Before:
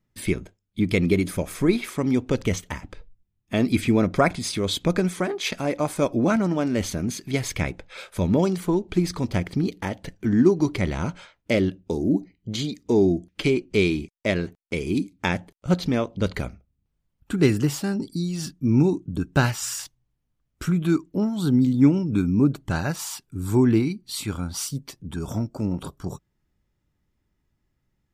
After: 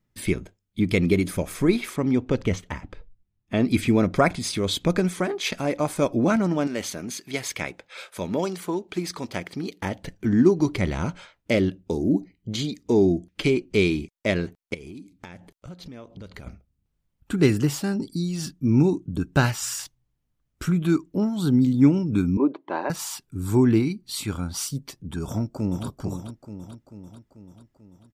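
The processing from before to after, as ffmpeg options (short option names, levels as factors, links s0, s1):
-filter_complex "[0:a]asettb=1/sr,asplit=3[s0][s1][s2];[s0]atrim=end=1.964[s3];[s1]atrim=start=1.96:end=3.71,asetpts=PTS-STARTPTS,afade=t=in:d=0.004:c=qsin,afade=t=out:st=1.746:d=0.004:c=qsin,aemphasis=mode=reproduction:type=50kf[s4];[s2]atrim=start=3.706[s5];[s3][s4]acrossfade=d=0.004:c1=hsin:c2=qsin[s6];[s6][s5]acrossfade=d=0.004:c1=qsin:c2=hsin,asettb=1/sr,asplit=3[s7][s8][s9];[s7]atrim=end=6.674[s10];[s8]atrim=start=6.67:end=9.82,asetpts=PTS-STARTPTS,afade=t=in:d=0.004:c=qsin,afade=t=out:st=3.146:d=0.004:c=qsin,highpass=f=500:p=1[s11];[s9]atrim=start=9.816[s12];[s10][s11]acrossfade=d=0.004:c1=hsin:c2=qsin[s13];[s13][s12]acrossfade=d=0.004:c1=qsin:c2=hsin,asettb=1/sr,asplit=3[s14][s15][s16];[s14]atrim=end=14.744[s17];[s15]atrim=start=14.74:end=16.47,asetpts=PTS-STARTPTS,afade=t=in:d=0.004:c=qsin,afade=t=out:st=1.726:d=0.004:c=qsin,acompressor=threshold=0.0141:ratio=10:attack=3.2:release=140:knee=1:detection=peak[s18];[s16]atrim=start=16.466[s19];[s17][s18]acrossfade=d=0.004:c1=hsin:c2=qsin[s20];[s20][s19]acrossfade=d=0.004:c1=qsin:c2=hsin,asettb=1/sr,asplit=3[s21][s22][s23];[s21]atrim=end=22.374[s24];[s22]atrim=start=22.37:end=22.9,asetpts=PTS-STARTPTS,afade=t=in:d=0.004:c=qsin,afade=t=out:st=0.526:d=0.004:c=qsin,highpass=f=300:w=0.5412,highpass=f=300:w=1.3066,equalizer=f=340:t=q:w=4:g=5,equalizer=f=550:t=q:w=4:g=4,equalizer=f=980:t=q:w=4:g=10,equalizer=f=1400:t=q:w=4:g=-9,equalizer=f=2800:t=q:w=4:g=-6,lowpass=f=3100:w=0.5412,lowpass=f=3100:w=1.3066[s25];[s23]atrim=start=22.896[s26];[s24][s25]acrossfade=d=0.004:c1=hsin:c2=qsin[s27];[s27][s26]acrossfade=d=0.004:c1=qsin:c2=hsin,asplit=2[s28][s29];[s29]afade=t=in:st=25.27:d=0.01,afade=t=out:st=25.86:d=0.01,aecho=0:1:440|880|1320|1760|2200|2640|3080|3520:0.398107|0.238864|0.143319|0.0859911|0.0515947|0.0309568|0.0185741|0.0111445[s30];[s28][s30]amix=inputs=2:normalize=0"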